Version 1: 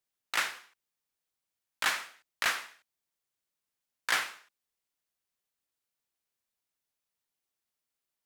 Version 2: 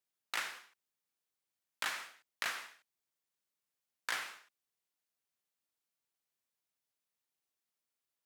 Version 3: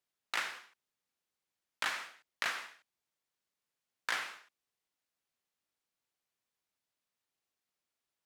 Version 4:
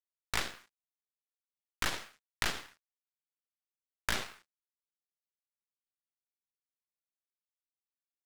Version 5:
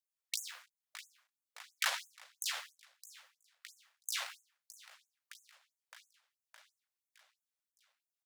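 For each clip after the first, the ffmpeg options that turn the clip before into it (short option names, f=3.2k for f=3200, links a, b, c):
-af "highpass=95,acompressor=threshold=-30dB:ratio=6,volume=-3dB"
-af "highshelf=f=8.3k:g=-9,volume=3dB"
-af "acrusher=bits=8:mix=0:aa=0.5,aeval=exprs='0.126*(cos(1*acos(clip(val(0)/0.126,-1,1)))-cos(1*PI/2))+0.0316*(cos(3*acos(clip(val(0)/0.126,-1,1)))-cos(3*PI/2))+0.0141*(cos(8*acos(clip(val(0)/0.126,-1,1)))-cos(8*PI/2))':c=same,volume=6dB"
-af "aecho=1:1:614|1228|1842|2456|3070|3684:0.158|0.0951|0.0571|0.0342|0.0205|0.0123,afftfilt=real='re*gte(b*sr/1024,470*pow(6400/470,0.5+0.5*sin(2*PI*3*pts/sr)))':imag='im*gte(b*sr/1024,470*pow(6400/470,0.5+0.5*sin(2*PI*3*pts/sr)))':win_size=1024:overlap=0.75,volume=1.5dB"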